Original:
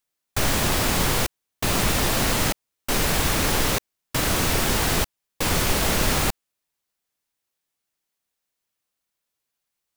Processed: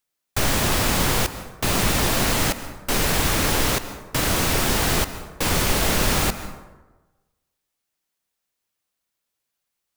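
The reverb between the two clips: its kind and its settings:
dense smooth reverb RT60 1.2 s, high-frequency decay 0.5×, pre-delay 120 ms, DRR 12 dB
level +1 dB

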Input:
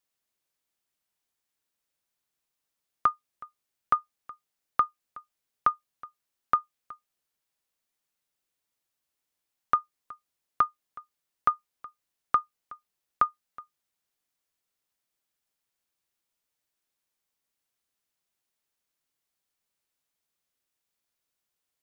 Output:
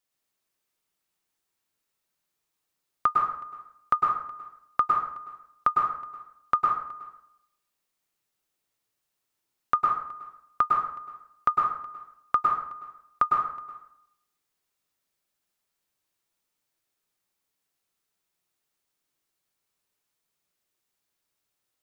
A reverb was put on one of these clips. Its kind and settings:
dense smooth reverb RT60 0.75 s, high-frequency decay 0.65×, pre-delay 95 ms, DRR −1 dB

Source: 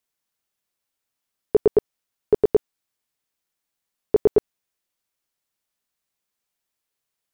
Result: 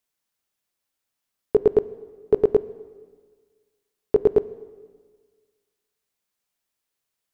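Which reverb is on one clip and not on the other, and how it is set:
dense smooth reverb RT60 1.6 s, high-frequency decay 0.9×, DRR 15.5 dB

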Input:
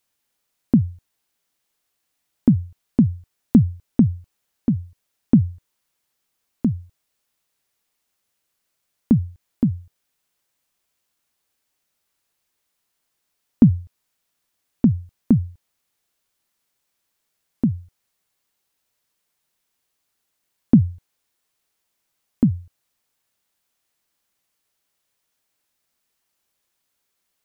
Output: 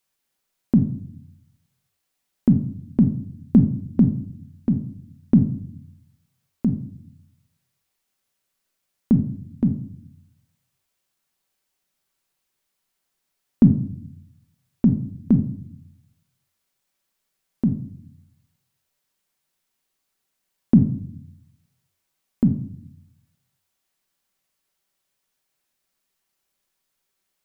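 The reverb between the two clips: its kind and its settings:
rectangular room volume 870 cubic metres, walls furnished, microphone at 1.1 metres
level −2.5 dB

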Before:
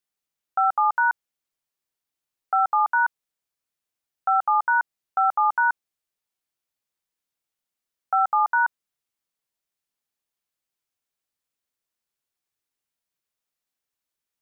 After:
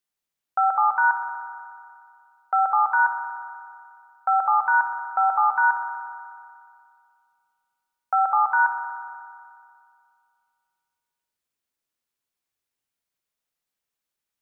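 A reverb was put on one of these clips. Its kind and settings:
spring reverb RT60 2.3 s, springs 58 ms, chirp 60 ms, DRR 5.5 dB

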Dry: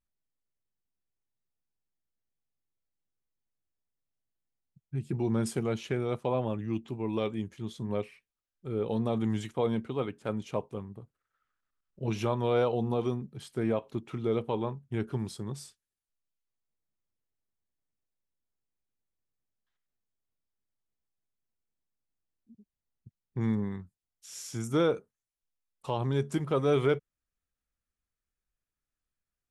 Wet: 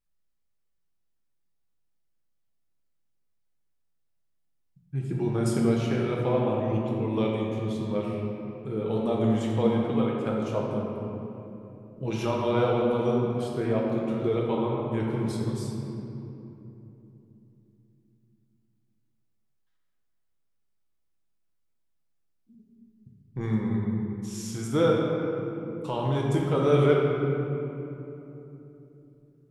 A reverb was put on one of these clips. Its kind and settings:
rectangular room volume 150 cubic metres, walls hard, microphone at 0.61 metres

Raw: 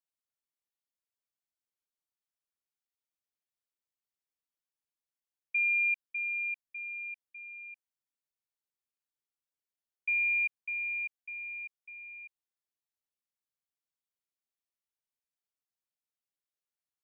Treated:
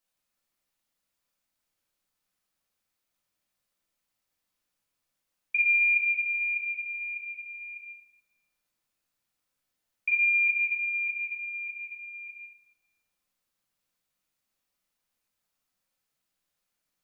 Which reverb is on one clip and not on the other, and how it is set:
rectangular room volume 500 cubic metres, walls mixed, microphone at 2 metres
level +7.5 dB

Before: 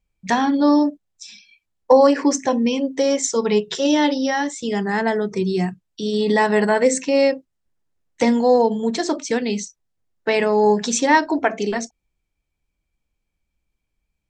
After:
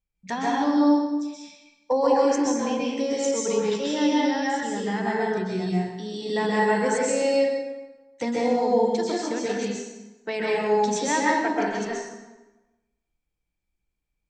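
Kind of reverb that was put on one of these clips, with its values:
dense smooth reverb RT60 1.1 s, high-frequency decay 0.75×, pre-delay 115 ms, DRR −5 dB
level −11 dB

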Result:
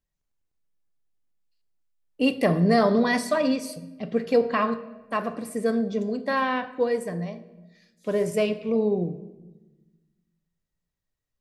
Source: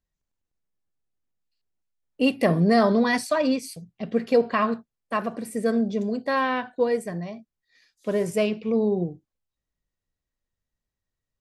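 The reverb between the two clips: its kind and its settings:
rectangular room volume 640 cubic metres, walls mixed, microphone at 0.38 metres
level −1 dB

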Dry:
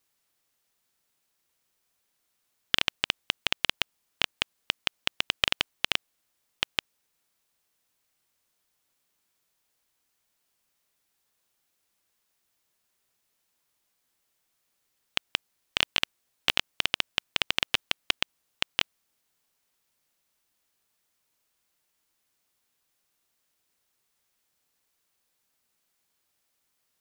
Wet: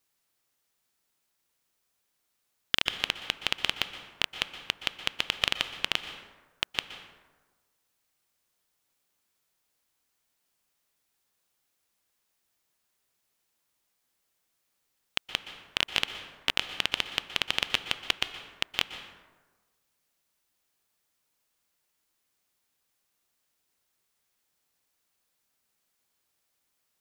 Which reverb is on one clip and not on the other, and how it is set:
dense smooth reverb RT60 1.3 s, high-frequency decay 0.5×, pre-delay 110 ms, DRR 9.5 dB
level −1.5 dB

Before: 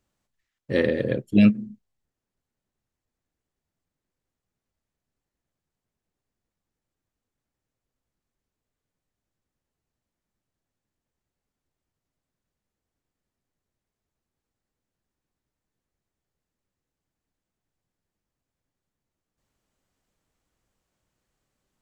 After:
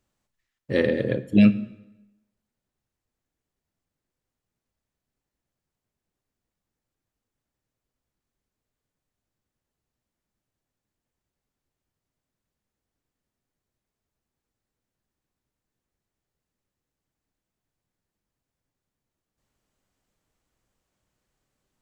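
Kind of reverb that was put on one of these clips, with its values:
dense smooth reverb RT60 0.98 s, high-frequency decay 0.85×, DRR 14 dB

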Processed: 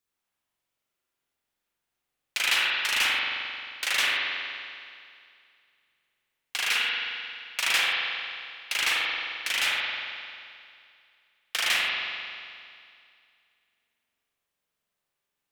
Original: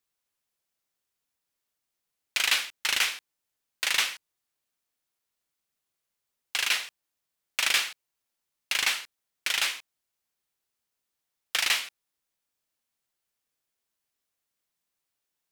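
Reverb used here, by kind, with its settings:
spring reverb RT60 2.3 s, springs 44 ms, chirp 70 ms, DRR −5.5 dB
level −2.5 dB

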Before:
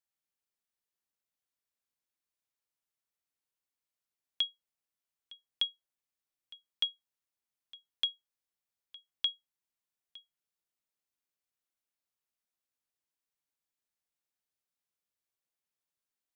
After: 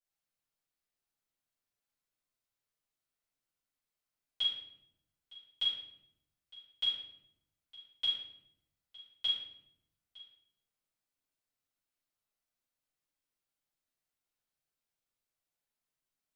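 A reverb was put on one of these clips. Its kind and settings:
rectangular room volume 210 cubic metres, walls mixed, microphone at 5.1 metres
level −12.5 dB

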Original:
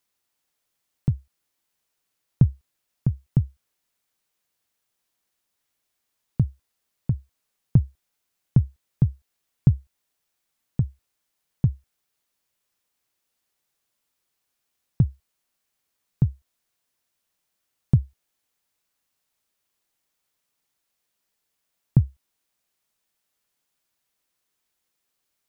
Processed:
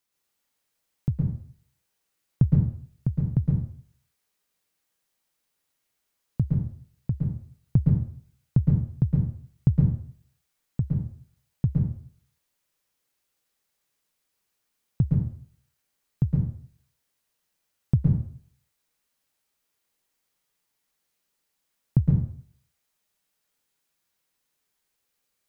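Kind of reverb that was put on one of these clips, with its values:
dense smooth reverb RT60 0.54 s, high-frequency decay 0.8×, pre-delay 105 ms, DRR −2 dB
level −3.5 dB

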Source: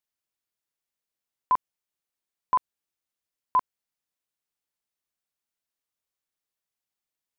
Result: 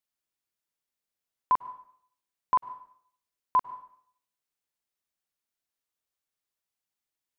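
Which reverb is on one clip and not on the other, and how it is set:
dense smooth reverb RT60 0.63 s, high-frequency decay 0.95×, pre-delay 90 ms, DRR 16 dB
level −1 dB

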